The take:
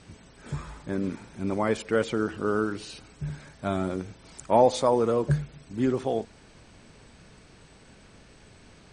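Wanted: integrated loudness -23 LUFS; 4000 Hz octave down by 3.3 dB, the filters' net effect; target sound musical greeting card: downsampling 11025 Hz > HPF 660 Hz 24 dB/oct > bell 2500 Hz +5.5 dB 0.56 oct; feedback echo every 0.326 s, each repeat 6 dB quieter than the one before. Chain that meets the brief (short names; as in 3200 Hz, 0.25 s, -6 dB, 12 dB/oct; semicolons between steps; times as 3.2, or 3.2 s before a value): bell 4000 Hz -6 dB; feedback echo 0.326 s, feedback 50%, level -6 dB; downsampling 11025 Hz; HPF 660 Hz 24 dB/oct; bell 2500 Hz +5.5 dB 0.56 oct; gain +9.5 dB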